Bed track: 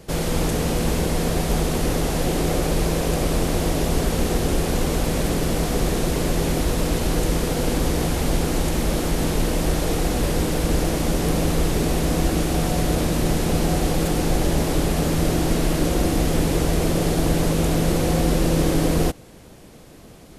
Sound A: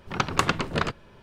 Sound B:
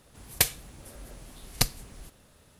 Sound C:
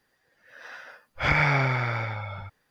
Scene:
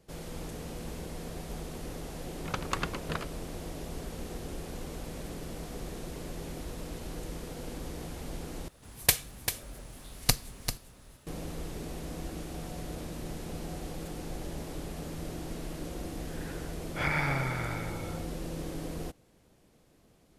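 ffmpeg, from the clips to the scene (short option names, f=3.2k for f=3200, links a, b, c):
-filter_complex "[0:a]volume=-18.5dB[a];[2:a]aecho=1:1:393:0.376[b];[a]asplit=2[c][d];[c]atrim=end=8.684[e];[b]atrim=end=2.59,asetpts=PTS-STARTPTS,volume=-0.5dB[f];[d]atrim=start=11.266[g];[1:a]atrim=end=1.22,asetpts=PTS-STARTPTS,volume=-10dB,afade=t=in:d=0.004:c=hsin,afade=t=out:st=1.216:d=0.004:c=hsin,adelay=2340[h];[3:a]atrim=end=2.7,asetpts=PTS-STARTPTS,volume=-8dB,afade=t=in:d=0.004:c=hsin,afade=t=out:st=2.696:d=0.004:c=hsin,adelay=15760[i];[e][f]acrossfade=d=0.004:c1=hsin:c2=hsin[j];[j][g]acrossfade=d=0.004:c1=hsin:c2=hsin[k];[k][h][i]amix=inputs=3:normalize=0"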